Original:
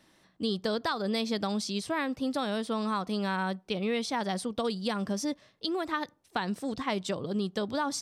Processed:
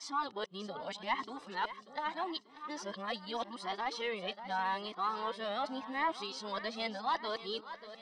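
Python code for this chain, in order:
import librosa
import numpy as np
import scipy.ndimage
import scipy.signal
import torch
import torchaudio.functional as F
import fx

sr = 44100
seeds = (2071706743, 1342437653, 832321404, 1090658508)

p1 = x[::-1].copy()
p2 = scipy.signal.sosfilt(scipy.signal.butter(2, 460.0, 'highpass', fs=sr, output='sos'), p1)
p3 = p2 + 0.36 * np.pad(p2, (int(1.0 * sr / 1000.0), 0))[:len(p2)]
p4 = 10.0 ** (-26.0 / 20.0) * np.tanh(p3 / 10.0 ** (-26.0 / 20.0))
p5 = p3 + F.gain(torch.from_numpy(p4), -3.0).numpy()
p6 = scipy.signal.sosfilt(scipy.signal.butter(2, 3700.0, 'lowpass', fs=sr, output='sos'), p5)
p7 = p6 + fx.echo_feedback(p6, sr, ms=589, feedback_pct=51, wet_db=-13, dry=0)
p8 = fx.comb_cascade(p7, sr, direction='rising', hz=0.83)
y = F.gain(torch.from_numpy(p8), -2.0).numpy()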